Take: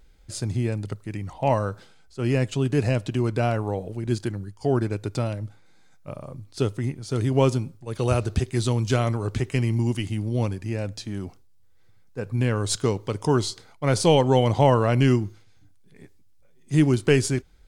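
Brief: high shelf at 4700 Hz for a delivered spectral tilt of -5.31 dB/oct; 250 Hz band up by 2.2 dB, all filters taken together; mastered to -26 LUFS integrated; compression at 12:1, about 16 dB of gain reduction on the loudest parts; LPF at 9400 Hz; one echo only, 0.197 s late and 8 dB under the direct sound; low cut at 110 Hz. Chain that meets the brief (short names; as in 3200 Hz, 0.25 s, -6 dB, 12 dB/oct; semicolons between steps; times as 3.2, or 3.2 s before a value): HPF 110 Hz; LPF 9400 Hz; bell 250 Hz +3 dB; high shelf 4700 Hz +7 dB; compressor 12:1, threshold -28 dBFS; echo 0.197 s -8 dB; gain +8 dB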